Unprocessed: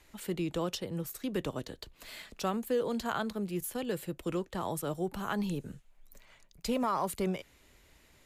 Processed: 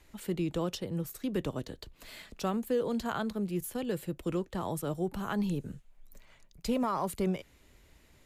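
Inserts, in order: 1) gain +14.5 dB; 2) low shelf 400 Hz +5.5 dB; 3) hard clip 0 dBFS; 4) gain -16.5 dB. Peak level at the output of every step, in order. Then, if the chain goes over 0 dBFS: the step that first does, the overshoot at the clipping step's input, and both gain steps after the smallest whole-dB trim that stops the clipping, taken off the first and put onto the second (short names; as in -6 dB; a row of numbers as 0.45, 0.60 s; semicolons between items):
-5.5, -3.5, -3.5, -20.0 dBFS; no overload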